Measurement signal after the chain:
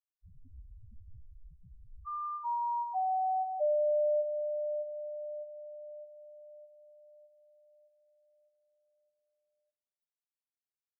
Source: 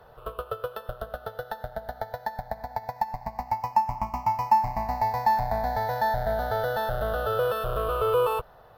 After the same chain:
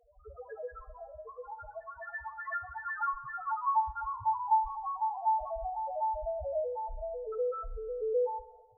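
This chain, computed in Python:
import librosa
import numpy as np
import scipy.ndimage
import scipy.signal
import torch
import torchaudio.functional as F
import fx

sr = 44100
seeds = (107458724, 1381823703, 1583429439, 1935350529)

y = fx.echo_pitch(x, sr, ms=88, semitones=4, count=3, db_per_echo=-3.0)
y = fx.spec_topn(y, sr, count=1)
y = fx.rev_spring(y, sr, rt60_s=1.3, pass_ms=(31, 52), chirp_ms=30, drr_db=14.5)
y = y * 10.0 ** (-1.0 / 20.0)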